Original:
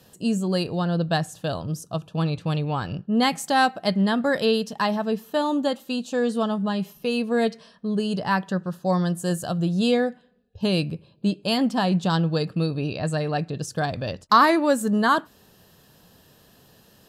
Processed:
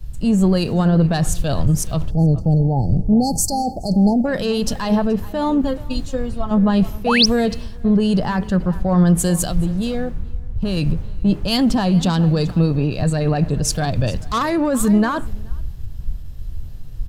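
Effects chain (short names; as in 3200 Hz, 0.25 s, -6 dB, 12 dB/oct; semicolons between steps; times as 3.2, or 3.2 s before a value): in parallel at +2 dB: level quantiser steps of 14 dB; on the sum: soft clip -10 dBFS, distortion -15 dB; 5.61–6.51 metallic resonator 79 Hz, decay 0.22 s, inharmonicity 0.03; 9.48–10.77 compressor 5:1, threshold -28 dBFS, peak gain reduction 11.5 dB; added noise brown -36 dBFS; 2.11–4.26 spectral delete 890–4200 Hz; limiter -20 dBFS, peak gain reduction 10.5 dB; on a send: echo 0.429 s -16.5 dB; 7.06–7.26 on the sum: painted sound rise 590–6200 Hz -26 dBFS; low shelf 240 Hz +7.5 dB; three-band expander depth 100%; gain +6 dB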